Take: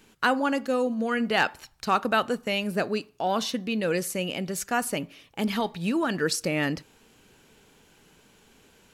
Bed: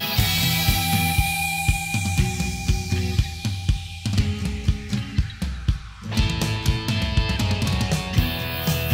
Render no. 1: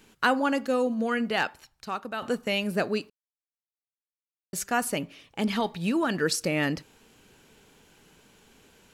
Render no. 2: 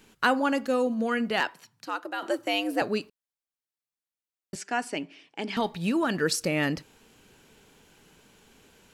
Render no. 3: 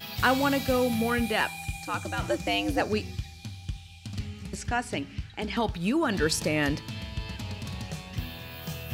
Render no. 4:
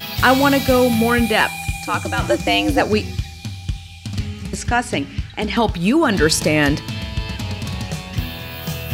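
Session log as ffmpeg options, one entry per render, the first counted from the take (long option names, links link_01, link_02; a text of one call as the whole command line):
ffmpeg -i in.wav -filter_complex "[0:a]asettb=1/sr,asplit=3[link_01][link_02][link_03];[link_01]atrim=end=5.044[link_04];[link_02]atrim=start=5.04:end=5.63,asetpts=PTS-STARTPTS,afade=type=in:duration=0.004:curve=qsin,afade=type=out:start_time=0.586:duration=0.004:curve=qsin,equalizer=frequency=13000:width=2.1:gain=-9.5[link_05];[link_03]atrim=start=5.626[link_06];[link_04][link_05]acrossfade=duration=0.004:curve1=hsin:curve2=qsin[link_07];[link_07][link_06]acrossfade=duration=0.004:curve1=qsin:curve2=hsin,asplit=4[link_08][link_09][link_10][link_11];[link_08]atrim=end=2.22,asetpts=PTS-STARTPTS,afade=type=out:start_time=1.08:duration=1.14:curve=qua:silence=0.298538[link_12];[link_09]atrim=start=2.22:end=3.1,asetpts=PTS-STARTPTS,afade=type=in:duration=0.004:curve=hsin:silence=0.298538,afade=type=out:start_time=0.876:duration=0.004:curve=hsin[link_13];[link_10]atrim=start=3.1:end=4.53,asetpts=PTS-STARTPTS,volume=0[link_14];[link_11]atrim=start=4.53,asetpts=PTS-STARTPTS,afade=type=in:duration=0.004:curve=hsin[link_15];[link_12][link_13][link_14][link_15]concat=n=4:v=0:a=1" out.wav
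ffmpeg -i in.wav -filter_complex "[0:a]asettb=1/sr,asplit=3[link_01][link_02][link_03];[link_01]atrim=end=1.404[link_04];[link_02]atrim=start=1.4:end=2.82,asetpts=PTS-STARTPTS,afade=type=in:duration=0.004:curve=qsin,afade=type=out:start_time=1.416:duration=0.004:curve=qsin,afreqshift=100[link_05];[link_03]atrim=start=2.816[link_06];[link_04][link_05]acrossfade=duration=0.004:curve1=hsin:curve2=qsin[link_07];[link_07][link_06]acrossfade=duration=0.004:curve1=qsin:curve2=hsin,asettb=1/sr,asplit=3[link_08][link_09][link_10];[link_08]atrim=end=4.554[link_11];[link_09]atrim=start=4.55:end=5.57,asetpts=PTS-STARTPTS,afade=type=in:duration=0.004:curve=qsin,afade=type=out:start_time=1.016:duration=0.004:curve=qsin,highpass=frequency=190:width=0.5412,highpass=frequency=190:width=1.3066,equalizer=frequency=210:width_type=q:width=4:gain=-10,equalizer=frequency=310:width_type=q:width=4:gain=3,equalizer=frequency=530:width_type=q:width=4:gain=-8,equalizer=frequency=1200:width_type=q:width=4:gain=-8,equalizer=frequency=3800:width_type=q:width=4:gain=-6,equalizer=frequency=6600:width_type=q:width=4:gain=-7,lowpass=frequency=7500:width=0.5412,lowpass=frequency=7500:width=1.3066[link_12];[link_10]atrim=start=5.566[link_13];[link_11][link_12]acrossfade=duration=0.004:curve1=hsin:curve2=qsin[link_14];[link_14][link_13]acrossfade=duration=0.004:curve1=qsin:curve2=hsin" out.wav
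ffmpeg -i in.wav -i bed.wav -filter_complex "[1:a]volume=-14dB[link_01];[0:a][link_01]amix=inputs=2:normalize=0" out.wav
ffmpeg -i in.wav -af "volume=10.5dB,alimiter=limit=-2dB:level=0:latency=1" out.wav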